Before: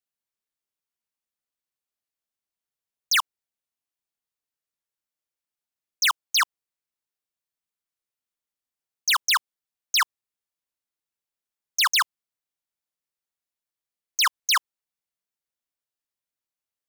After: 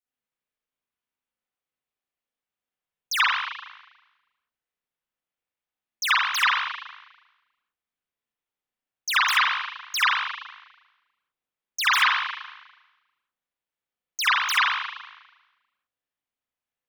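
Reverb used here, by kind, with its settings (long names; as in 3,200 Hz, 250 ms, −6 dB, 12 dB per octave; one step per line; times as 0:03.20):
spring reverb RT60 1.1 s, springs 35/39 ms, chirp 80 ms, DRR −10 dB
level −6.5 dB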